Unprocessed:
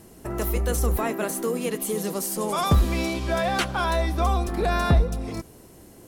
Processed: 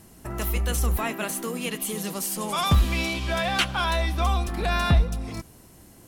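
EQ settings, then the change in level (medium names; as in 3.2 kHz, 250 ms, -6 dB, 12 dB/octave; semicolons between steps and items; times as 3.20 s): peaking EQ 430 Hz -7.5 dB 1.2 oct; dynamic bell 2.9 kHz, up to +7 dB, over -48 dBFS, Q 1.7; 0.0 dB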